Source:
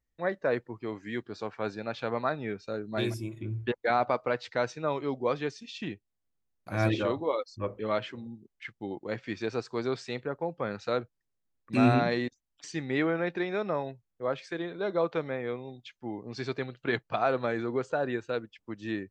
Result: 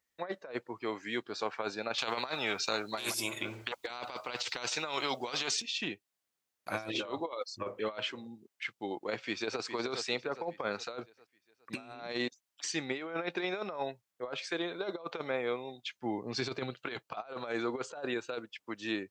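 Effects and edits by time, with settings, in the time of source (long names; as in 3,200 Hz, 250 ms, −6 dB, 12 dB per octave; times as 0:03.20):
0:01.98–0:05.62: every bin compressed towards the loudest bin 2 to 1
0:09.12–0:09.62: delay throw 410 ms, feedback 45%, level −11 dB
0:15.92–0:16.74: low-shelf EQ 240 Hz +10.5 dB
whole clip: high-pass filter 950 Hz 6 dB per octave; dynamic equaliser 1,800 Hz, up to −8 dB, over −54 dBFS, Q 3.4; compressor whose output falls as the input rises −39 dBFS, ratio −0.5; level +4.5 dB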